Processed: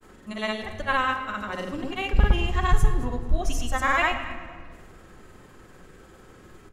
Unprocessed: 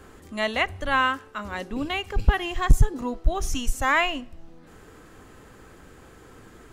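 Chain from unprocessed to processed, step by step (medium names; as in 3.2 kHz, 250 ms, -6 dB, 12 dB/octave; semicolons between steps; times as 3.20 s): granulator, pitch spread up and down by 0 st; on a send: feedback delay 219 ms, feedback 32%, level -18 dB; on the sum: simulated room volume 2500 m³, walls mixed, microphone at 1 m; trim -1 dB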